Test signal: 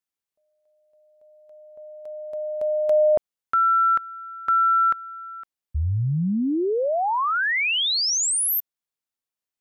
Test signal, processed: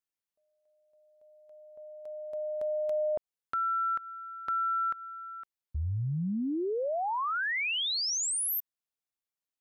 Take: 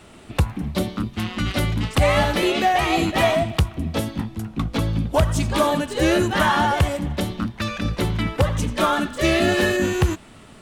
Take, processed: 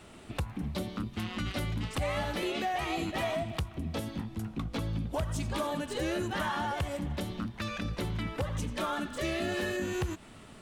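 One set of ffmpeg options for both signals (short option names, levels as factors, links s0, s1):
-af "acompressor=threshold=0.0631:ratio=3:attack=1.5:release=205:knee=1:detection=rms,volume=0.531"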